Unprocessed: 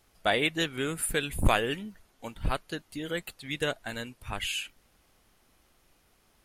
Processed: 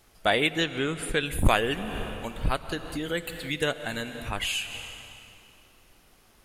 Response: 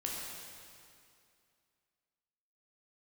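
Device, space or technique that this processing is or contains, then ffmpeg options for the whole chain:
ducked reverb: -filter_complex "[0:a]asettb=1/sr,asplit=3[a][b][c];[a]atrim=end=0.604[d];[b]atrim=start=0.6:end=1.26,asetpts=PTS-STARTPTS,afade=t=in:d=0.004:c=qsin,afade=t=out:st=0.656:d=0.004:c=qsin,lowpass=5.8k[e];[c]atrim=start=1.256[f];[d][e]acrossfade=d=0.004:c1=hsin:c2=qsin[g];[g][f]acrossfade=d=0.004:c1=qsin:c2=hsin,asplit=3[h][i][j];[1:a]atrim=start_sample=2205[k];[i][k]afir=irnorm=-1:irlink=0[l];[j]apad=whole_len=284011[m];[l][m]sidechaincompress=threshold=-41dB:ratio=8:attack=34:release=183,volume=-3.5dB[n];[h][n]amix=inputs=2:normalize=0,volume=2dB"

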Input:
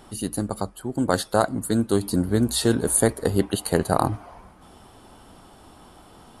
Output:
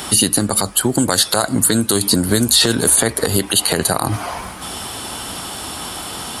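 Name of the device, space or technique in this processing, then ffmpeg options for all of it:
mastering chain: -filter_complex "[0:a]highpass=56,equalizer=f=990:t=o:w=2.8:g=-3,acrossover=split=86|4700[a][b][c];[a]acompressor=threshold=-48dB:ratio=4[d];[b]acompressor=threshold=-26dB:ratio=4[e];[c]acompressor=threshold=-41dB:ratio=4[f];[d][e][f]amix=inputs=3:normalize=0,acompressor=threshold=-30dB:ratio=2.5,tiltshelf=f=1.1k:g=-7,alimiter=level_in=24dB:limit=-1dB:release=50:level=0:latency=1,volume=-1dB"

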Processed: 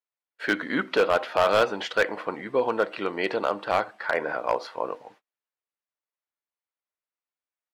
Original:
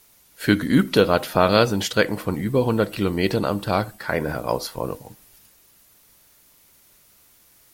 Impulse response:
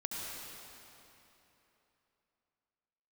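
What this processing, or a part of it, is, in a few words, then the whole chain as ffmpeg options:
walkie-talkie: -af "highpass=560,lowpass=2.3k,asoftclip=type=hard:threshold=-15.5dB,agate=range=-35dB:threshold=-54dB:ratio=16:detection=peak,volume=2dB"

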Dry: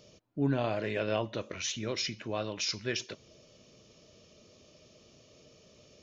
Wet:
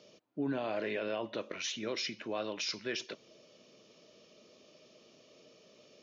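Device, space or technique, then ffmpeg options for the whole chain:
DJ mixer with the lows and highs turned down: -filter_complex "[0:a]asettb=1/sr,asplit=3[a][b][c];[a]atrim=end=0.844[d];[b]atrim=start=0.84:end=1.59,asetpts=PTS-STARTPTS,afade=t=in:d=0.004:c=qsin,afade=t=out:st=0.746:d=0.004:c=qsin,lowpass=6.3k[e];[c]atrim=start=1.586[f];[d][e]acrossfade=d=0.004:c1=hsin:c2=qsin[g];[g][f]acrossfade=d=0.004:c1=qsin:c2=hsin,acrossover=split=180 6500:gain=0.0708 1 0.0708[h][i][j];[h][i][j]amix=inputs=3:normalize=0,alimiter=level_in=2dB:limit=-24dB:level=0:latency=1:release=40,volume=-2dB"

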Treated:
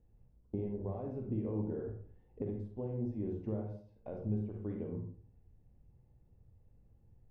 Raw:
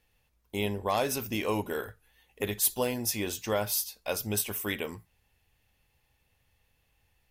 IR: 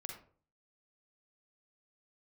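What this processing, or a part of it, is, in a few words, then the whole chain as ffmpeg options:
television next door: -filter_complex "[0:a]acompressor=threshold=-40dB:ratio=5,lowpass=340[a];[1:a]atrim=start_sample=2205[b];[a][b]afir=irnorm=-1:irlink=0,volume=12.5dB"

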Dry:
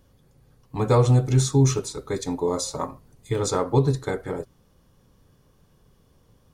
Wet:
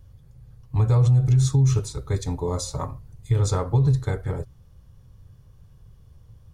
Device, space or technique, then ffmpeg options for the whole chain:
car stereo with a boomy subwoofer: -af "lowshelf=f=160:t=q:w=1.5:g=13,alimiter=limit=-9.5dB:level=0:latency=1:release=85,volume=-2.5dB"

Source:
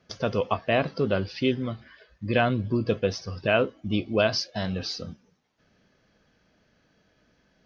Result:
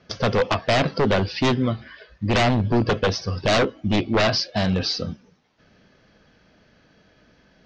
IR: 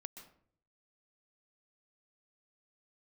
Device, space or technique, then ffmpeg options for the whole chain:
synthesiser wavefolder: -filter_complex "[0:a]aeval=exprs='0.0841*(abs(mod(val(0)/0.0841+3,4)-2)-1)':c=same,lowpass=f=5.9k:w=0.5412,lowpass=f=5.9k:w=1.3066,asettb=1/sr,asplit=3[a][b][c];[a]atrim=end=3.964[d];[b]atrim=start=3.96:end=4.55,asetpts=PTS-STARTPTS,afade=t=in:d=0.004:c=qsin,afade=t=out:st=0.586:d=0.004:c=qsin,lowpass=5.8k[e];[c]atrim=start=4.546[f];[d][e]acrossfade=d=0.004:c1=hsin:c2=qsin[g];[g][f]acrossfade=d=0.004:c1=qsin:c2=hsin,volume=8.5dB"

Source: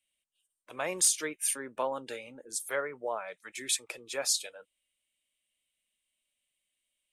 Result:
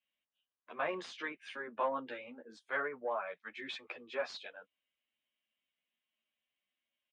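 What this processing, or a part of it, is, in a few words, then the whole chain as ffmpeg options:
barber-pole flanger into a guitar amplifier: -filter_complex "[0:a]asplit=2[a][b];[b]adelay=11.1,afreqshift=-1.1[c];[a][c]amix=inputs=2:normalize=1,asoftclip=type=tanh:threshold=-23dB,highpass=92,equalizer=f=120:t=q:w=4:g=-9,equalizer=f=230:t=q:w=4:g=6,equalizer=f=720:t=q:w=4:g=4,equalizer=f=1.1k:t=q:w=4:g=6,equalizer=f=1.6k:t=q:w=4:g=5,lowpass=f=3.4k:w=0.5412,lowpass=f=3.4k:w=1.3066,volume=-1dB"

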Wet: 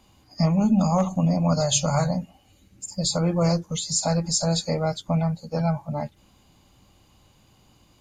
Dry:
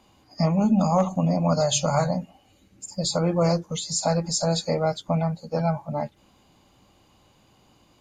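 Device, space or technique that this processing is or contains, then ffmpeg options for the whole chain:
smiley-face EQ: -af "lowshelf=f=160:g=6.5,equalizer=f=480:t=o:w=2.9:g=-3,highshelf=f=6.5k:g=5"

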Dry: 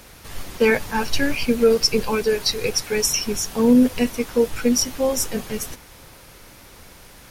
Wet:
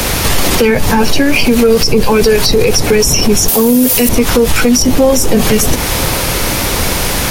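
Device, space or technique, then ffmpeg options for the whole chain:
mastering chain: -filter_complex "[0:a]asettb=1/sr,asplit=3[a][b][c];[a]atrim=end=3.484[d];[b]atrim=start=3.48:end=4.09,asetpts=PTS-STARTPTS,afade=t=in:d=0.004:c=qsin,afade=t=out:st=0.606:d=0.004:c=qsin,aemphasis=mode=production:type=riaa[e];[c]atrim=start=4.086[f];[d][e]acrossfade=d=0.004:c1=hsin:c2=qsin[g];[g][f]acrossfade=d=0.004:c1=qsin:c2=hsin,equalizer=f=1.5k:t=o:w=0.77:g=-2.5,acrossover=split=180|690[h][i][j];[h]acompressor=threshold=-34dB:ratio=4[k];[i]acompressor=threshold=-31dB:ratio=4[l];[j]acompressor=threshold=-37dB:ratio=4[m];[k][l][m]amix=inputs=3:normalize=0,acompressor=threshold=-31dB:ratio=2,asoftclip=type=tanh:threshold=-23dB,alimiter=level_in=32.5dB:limit=-1dB:release=50:level=0:latency=1,volume=-1dB"

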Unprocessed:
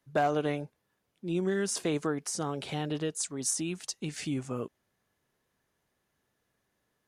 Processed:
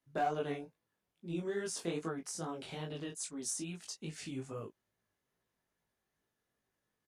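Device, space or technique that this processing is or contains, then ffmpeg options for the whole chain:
double-tracked vocal: -filter_complex "[0:a]asplit=2[a][b];[b]adelay=18,volume=-5.5dB[c];[a][c]amix=inputs=2:normalize=0,flanger=delay=18:depth=5.5:speed=2.4,volume=-5.5dB"

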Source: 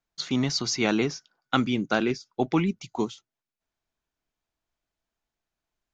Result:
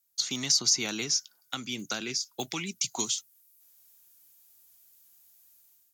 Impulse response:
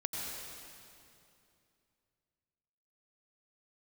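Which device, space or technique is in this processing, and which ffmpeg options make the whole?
FM broadcast chain: -filter_complex "[0:a]highpass=61,dynaudnorm=f=190:g=5:m=13.5dB,acrossover=split=190|1400[a][b][c];[a]acompressor=threshold=-35dB:ratio=4[d];[b]acompressor=threshold=-28dB:ratio=4[e];[c]acompressor=threshold=-30dB:ratio=4[f];[d][e][f]amix=inputs=3:normalize=0,aemphasis=mode=production:type=75fm,alimiter=limit=-12.5dB:level=0:latency=1:release=347,asoftclip=type=hard:threshold=-13.5dB,lowpass=f=15k:w=0.5412,lowpass=f=15k:w=1.3066,aemphasis=mode=production:type=75fm,volume=-8dB"

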